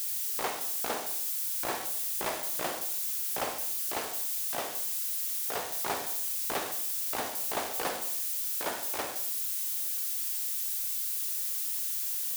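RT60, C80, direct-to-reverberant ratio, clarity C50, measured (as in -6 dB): 0.65 s, 10.5 dB, 6.5 dB, 7.0 dB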